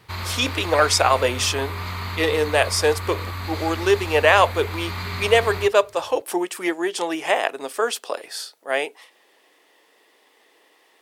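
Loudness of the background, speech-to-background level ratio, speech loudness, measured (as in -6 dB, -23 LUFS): -30.0 LUFS, 8.5 dB, -21.5 LUFS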